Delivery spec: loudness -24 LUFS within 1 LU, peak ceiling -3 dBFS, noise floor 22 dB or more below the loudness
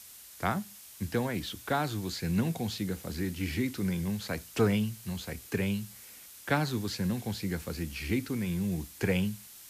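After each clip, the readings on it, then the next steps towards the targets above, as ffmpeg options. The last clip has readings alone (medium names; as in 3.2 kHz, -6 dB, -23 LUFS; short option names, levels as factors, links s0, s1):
noise floor -51 dBFS; noise floor target -55 dBFS; loudness -32.5 LUFS; peak level -13.5 dBFS; loudness target -24.0 LUFS
-> -af "afftdn=nr=6:nf=-51"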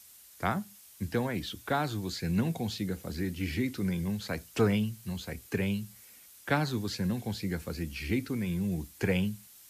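noise floor -55 dBFS; loudness -32.5 LUFS; peak level -13.5 dBFS; loudness target -24.0 LUFS
-> -af "volume=2.66"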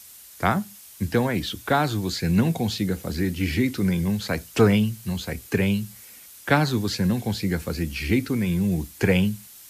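loudness -24.0 LUFS; peak level -5.0 dBFS; noise floor -46 dBFS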